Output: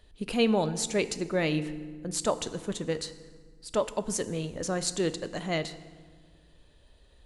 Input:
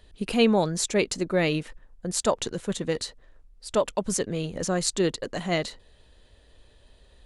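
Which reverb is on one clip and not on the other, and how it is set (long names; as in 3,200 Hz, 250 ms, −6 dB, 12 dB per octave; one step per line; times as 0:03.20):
feedback delay network reverb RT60 1.6 s, low-frequency decay 1.5×, high-frequency decay 0.7×, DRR 12 dB
level −4 dB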